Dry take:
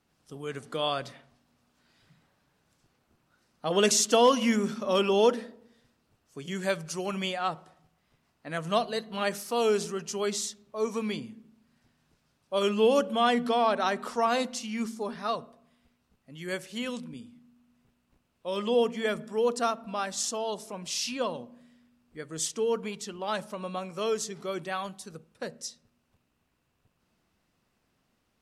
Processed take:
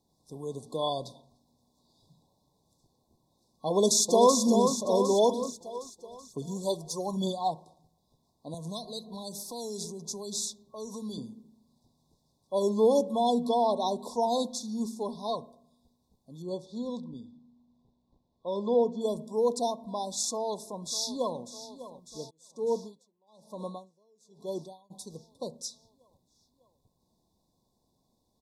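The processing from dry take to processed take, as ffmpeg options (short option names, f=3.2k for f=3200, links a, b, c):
-filter_complex "[0:a]asplit=2[a][b];[b]afade=t=in:st=3.7:d=0.01,afade=t=out:st=4.37:d=0.01,aecho=0:1:380|760|1140|1520|1900|2280|2660:0.530884|0.291986|0.160593|0.0883259|0.0485792|0.0267186|0.0146952[c];[a][c]amix=inputs=2:normalize=0,asplit=3[d][e][f];[d]afade=t=out:st=5.13:d=0.02[g];[e]aphaser=in_gain=1:out_gain=1:delay=3:decay=0.5:speed=1.1:type=triangular,afade=t=in:st=5.13:d=0.02,afade=t=out:st=7.5:d=0.02[h];[f]afade=t=in:st=7.5:d=0.02[i];[g][h][i]amix=inputs=3:normalize=0,asettb=1/sr,asplit=3[j][k][l];[j]atrim=end=8.544[m];[k]atrim=start=8.54:end=11.18,asetpts=PTS-STARTPTS,afade=t=in:d=0.004:c=qsin,afade=t=out:st=2.636:d=0.004:c=qsin,acrossover=split=170|3000[n][o][p];[o]acompressor=threshold=-40dB:ratio=4:attack=3.2:release=140:knee=2.83:detection=peak[q];[n][q][p]amix=inputs=3:normalize=0[r];[l]atrim=start=11.176[s];[m][r]acrossfade=d=0.004:c1=hsin:c2=qsin[t];[t][s]acrossfade=d=0.004:c1=qsin:c2=hsin,asettb=1/sr,asplit=3[u][v][w];[u]atrim=end=16.424[x];[v]atrim=start=16.42:end=19.01,asetpts=PTS-STARTPTS,afade=t=in:d=0.004:c=qsin,afade=t=out:st=2.586:d=0.004:c=qsin,lowpass=3.7k[y];[w]atrim=start=19.006[z];[x][y]acrossfade=d=0.004:c1=hsin:c2=qsin[aa];[aa][z]acrossfade=d=0.004:c1=qsin:c2=hsin,asplit=2[ab][ac];[ac]afade=t=in:st=20.26:d=0.01,afade=t=out:st=21.39:d=0.01,aecho=0:1:600|1200|1800|2400|3000|3600|4200|4800|5400:0.199526|0.139668|0.0977679|0.0684375|0.0479062|0.0335344|0.0234741|0.0164318|0.0115023[ad];[ab][ad]amix=inputs=2:normalize=0,asplit=3[ae][af][ag];[ae]afade=t=out:st=22.29:d=0.02[ah];[af]aeval=exprs='val(0)*pow(10,-38*(0.5-0.5*cos(2*PI*1.1*n/s))/20)':c=same,afade=t=in:st=22.29:d=0.02,afade=t=out:st=24.9:d=0.02[ai];[ag]afade=t=in:st=24.9:d=0.02[aj];[ah][ai][aj]amix=inputs=3:normalize=0,afftfilt=real='re*(1-between(b*sr/4096,1100,3400))':imag='im*(1-between(b*sr/4096,1100,3400))':win_size=4096:overlap=0.75"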